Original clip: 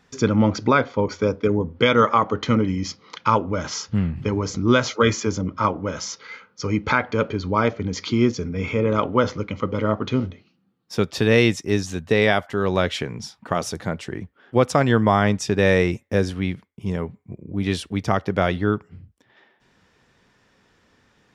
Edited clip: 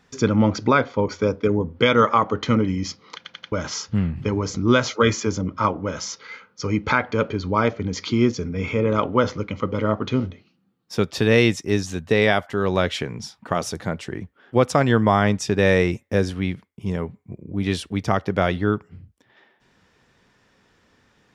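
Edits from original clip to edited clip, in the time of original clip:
3.16 stutter in place 0.09 s, 4 plays

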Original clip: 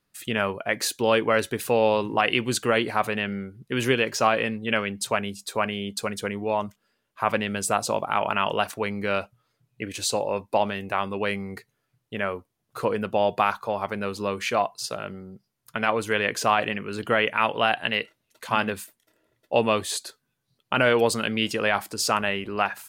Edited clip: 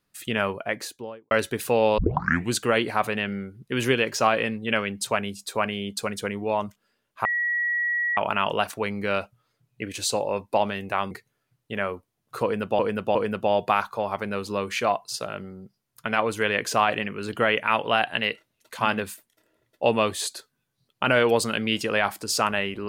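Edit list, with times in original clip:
0.51–1.31 studio fade out
1.98 tape start 0.54 s
7.25–8.17 bleep 1920 Hz -22 dBFS
11.11–11.53 cut
12.85–13.21 loop, 3 plays

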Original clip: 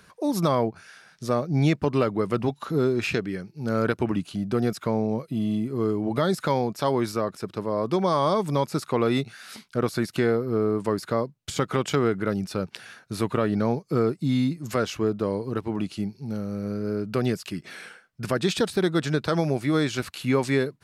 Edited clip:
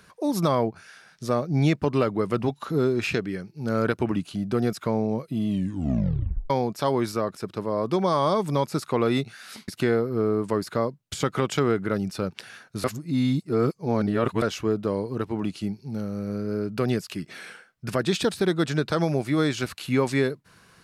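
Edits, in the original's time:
5.48 tape stop 1.02 s
9.68–10.04 cut
13.2–14.78 reverse

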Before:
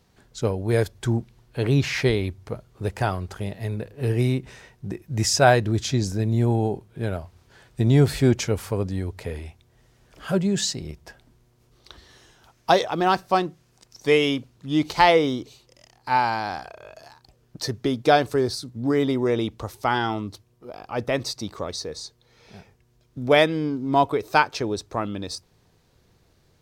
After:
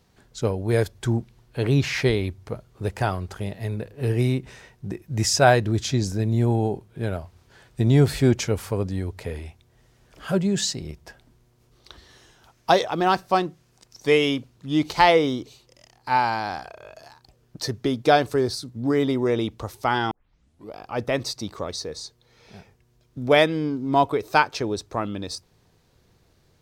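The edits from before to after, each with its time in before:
20.11 tape start 0.64 s

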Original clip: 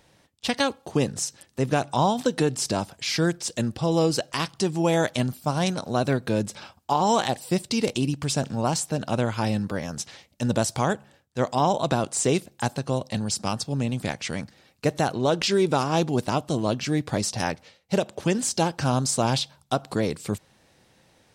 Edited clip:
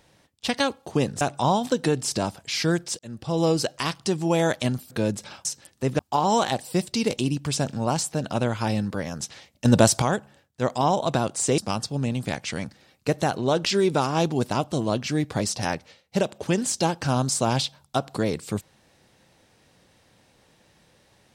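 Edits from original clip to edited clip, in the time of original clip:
1.21–1.75 move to 6.76
3.53–3.95 fade in
5.45–6.22 cut
10.42–10.79 gain +7 dB
12.35–13.35 cut

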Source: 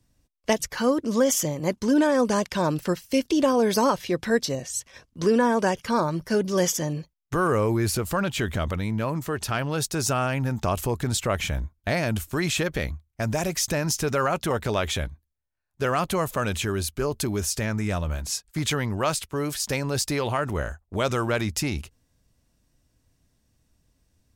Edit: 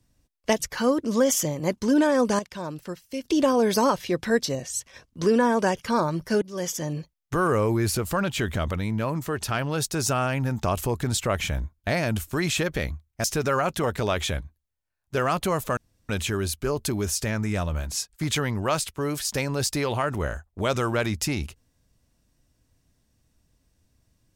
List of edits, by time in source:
2.39–3.24 gain -9.5 dB
6.42–7 fade in, from -18 dB
13.24–13.91 cut
16.44 insert room tone 0.32 s

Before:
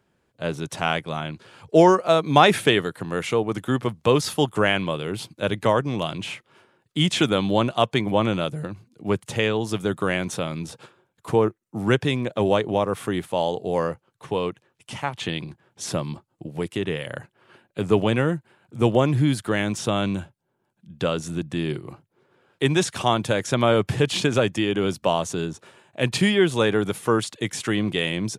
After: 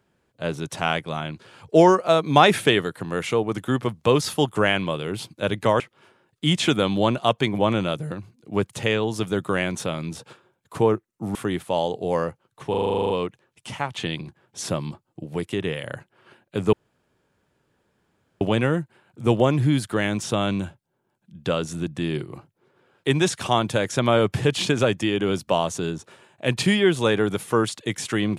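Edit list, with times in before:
5.8–6.33 cut
11.88–12.98 cut
14.33 stutter 0.04 s, 11 plays
17.96 insert room tone 1.68 s

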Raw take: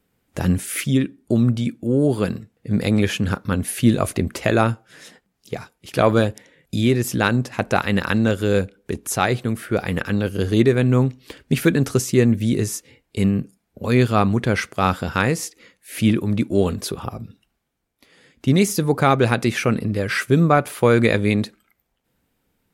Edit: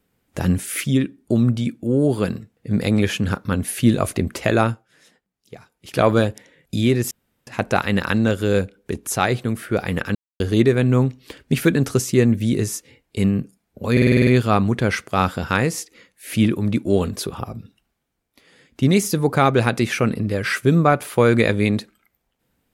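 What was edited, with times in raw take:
4.56–5.98 dip -11 dB, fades 0.32 s equal-power
7.11–7.47 room tone
10.15–10.4 mute
13.92 stutter 0.05 s, 8 plays

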